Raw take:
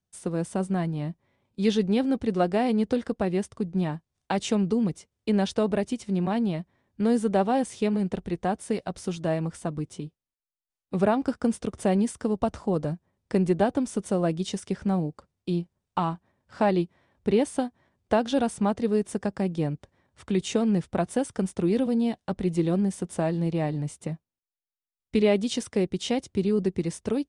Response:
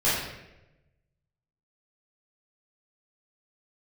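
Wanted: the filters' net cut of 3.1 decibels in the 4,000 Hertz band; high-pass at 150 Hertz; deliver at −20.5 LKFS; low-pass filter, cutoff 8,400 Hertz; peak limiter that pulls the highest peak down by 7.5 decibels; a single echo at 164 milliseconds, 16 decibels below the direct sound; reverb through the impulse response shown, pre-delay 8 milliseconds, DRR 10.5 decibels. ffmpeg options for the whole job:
-filter_complex "[0:a]highpass=150,lowpass=8400,equalizer=frequency=4000:width_type=o:gain=-4,alimiter=limit=-17dB:level=0:latency=1,aecho=1:1:164:0.158,asplit=2[link_01][link_02];[1:a]atrim=start_sample=2205,adelay=8[link_03];[link_02][link_03]afir=irnorm=-1:irlink=0,volume=-25dB[link_04];[link_01][link_04]amix=inputs=2:normalize=0,volume=8.5dB"

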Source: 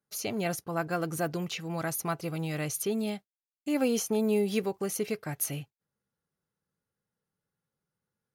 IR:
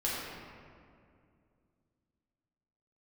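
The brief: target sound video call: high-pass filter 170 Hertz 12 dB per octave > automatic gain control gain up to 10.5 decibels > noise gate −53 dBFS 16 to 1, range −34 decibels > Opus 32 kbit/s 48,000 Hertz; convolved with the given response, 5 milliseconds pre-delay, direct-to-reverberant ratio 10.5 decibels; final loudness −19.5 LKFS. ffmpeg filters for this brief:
-filter_complex "[0:a]asplit=2[link_01][link_02];[1:a]atrim=start_sample=2205,adelay=5[link_03];[link_02][link_03]afir=irnorm=-1:irlink=0,volume=-17.5dB[link_04];[link_01][link_04]amix=inputs=2:normalize=0,highpass=170,dynaudnorm=maxgain=10.5dB,agate=range=-34dB:threshold=-53dB:ratio=16,volume=12.5dB" -ar 48000 -c:a libopus -b:a 32k

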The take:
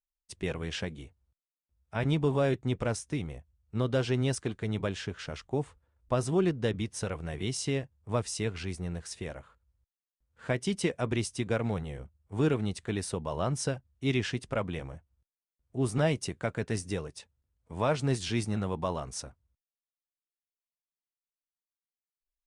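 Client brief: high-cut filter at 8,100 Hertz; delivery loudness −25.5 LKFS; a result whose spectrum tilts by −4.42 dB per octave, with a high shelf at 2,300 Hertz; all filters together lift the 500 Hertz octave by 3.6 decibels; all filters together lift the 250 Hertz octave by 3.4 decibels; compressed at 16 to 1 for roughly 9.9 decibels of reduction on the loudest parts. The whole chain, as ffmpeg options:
ffmpeg -i in.wav -af "lowpass=8100,equalizer=frequency=250:width_type=o:gain=3.5,equalizer=frequency=500:width_type=o:gain=3,highshelf=frequency=2300:gain=8.5,acompressor=threshold=-29dB:ratio=16,volume=10dB" out.wav

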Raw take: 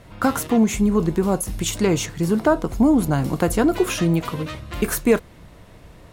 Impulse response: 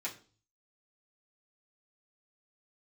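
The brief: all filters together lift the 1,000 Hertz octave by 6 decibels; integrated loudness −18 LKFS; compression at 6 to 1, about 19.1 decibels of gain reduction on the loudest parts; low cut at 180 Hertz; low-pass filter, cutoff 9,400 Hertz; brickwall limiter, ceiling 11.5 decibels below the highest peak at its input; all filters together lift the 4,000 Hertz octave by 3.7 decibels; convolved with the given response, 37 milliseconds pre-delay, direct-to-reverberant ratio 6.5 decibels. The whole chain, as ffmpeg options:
-filter_complex "[0:a]highpass=180,lowpass=9400,equalizer=frequency=1000:width_type=o:gain=7.5,equalizer=frequency=4000:width_type=o:gain=4.5,acompressor=threshold=-31dB:ratio=6,alimiter=level_in=2dB:limit=-24dB:level=0:latency=1,volume=-2dB,asplit=2[link_01][link_02];[1:a]atrim=start_sample=2205,adelay=37[link_03];[link_02][link_03]afir=irnorm=-1:irlink=0,volume=-8dB[link_04];[link_01][link_04]amix=inputs=2:normalize=0,volume=17.5dB"

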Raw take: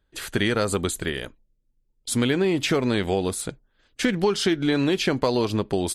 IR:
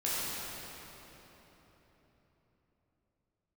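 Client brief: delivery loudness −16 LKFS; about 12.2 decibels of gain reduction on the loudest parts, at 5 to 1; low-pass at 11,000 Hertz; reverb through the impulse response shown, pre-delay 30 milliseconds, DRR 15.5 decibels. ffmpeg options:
-filter_complex "[0:a]lowpass=11000,acompressor=threshold=-32dB:ratio=5,asplit=2[link_01][link_02];[1:a]atrim=start_sample=2205,adelay=30[link_03];[link_02][link_03]afir=irnorm=-1:irlink=0,volume=-23.5dB[link_04];[link_01][link_04]amix=inputs=2:normalize=0,volume=19dB"

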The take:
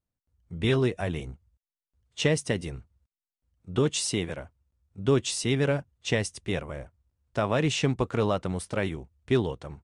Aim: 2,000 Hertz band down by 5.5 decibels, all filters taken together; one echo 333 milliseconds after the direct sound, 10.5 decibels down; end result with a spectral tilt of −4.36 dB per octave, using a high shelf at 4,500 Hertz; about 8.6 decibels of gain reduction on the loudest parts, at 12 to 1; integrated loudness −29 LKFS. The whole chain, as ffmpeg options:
ffmpeg -i in.wav -af "equalizer=frequency=2000:width_type=o:gain=-8.5,highshelf=frequency=4500:gain=6,acompressor=threshold=-27dB:ratio=12,aecho=1:1:333:0.299,volume=4.5dB" out.wav

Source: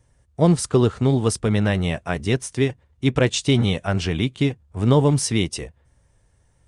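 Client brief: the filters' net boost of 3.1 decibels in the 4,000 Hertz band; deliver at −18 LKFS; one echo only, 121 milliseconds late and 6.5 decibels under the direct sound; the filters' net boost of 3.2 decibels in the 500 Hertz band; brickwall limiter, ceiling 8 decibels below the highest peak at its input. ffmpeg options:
ffmpeg -i in.wav -af "equalizer=frequency=500:width_type=o:gain=4,equalizer=frequency=4000:width_type=o:gain=4,alimiter=limit=-11dB:level=0:latency=1,aecho=1:1:121:0.473,volume=3.5dB" out.wav

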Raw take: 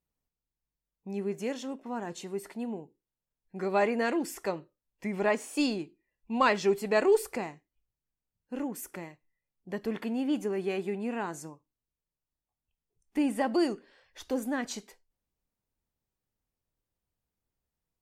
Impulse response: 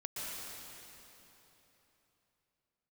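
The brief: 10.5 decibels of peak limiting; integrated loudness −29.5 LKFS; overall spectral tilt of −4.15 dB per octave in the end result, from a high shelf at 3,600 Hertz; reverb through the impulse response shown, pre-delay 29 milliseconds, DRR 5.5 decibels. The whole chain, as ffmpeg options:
-filter_complex "[0:a]highshelf=frequency=3600:gain=4.5,alimiter=limit=-22dB:level=0:latency=1,asplit=2[link_01][link_02];[1:a]atrim=start_sample=2205,adelay=29[link_03];[link_02][link_03]afir=irnorm=-1:irlink=0,volume=-7.5dB[link_04];[link_01][link_04]amix=inputs=2:normalize=0,volume=4dB"

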